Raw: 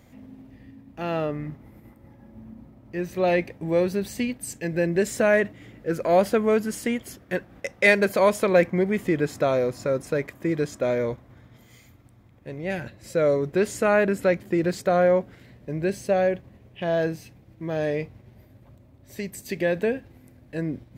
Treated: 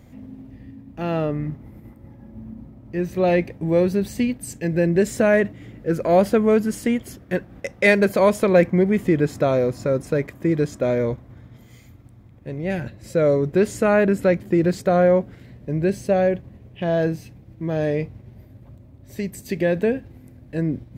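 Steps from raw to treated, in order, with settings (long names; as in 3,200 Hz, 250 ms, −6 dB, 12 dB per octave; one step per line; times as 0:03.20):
low-shelf EQ 390 Hz +8 dB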